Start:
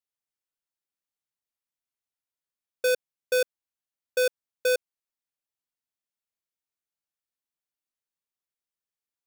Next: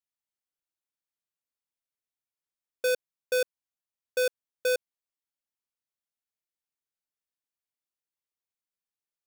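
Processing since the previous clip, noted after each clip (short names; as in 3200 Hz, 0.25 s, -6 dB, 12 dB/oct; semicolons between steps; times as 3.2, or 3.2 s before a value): sample leveller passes 1; gain -2.5 dB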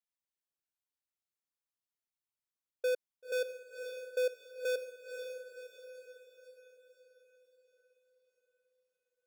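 formant sharpening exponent 1.5; diffused feedback echo 0.524 s, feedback 50%, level -7 dB; gain -5.5 dB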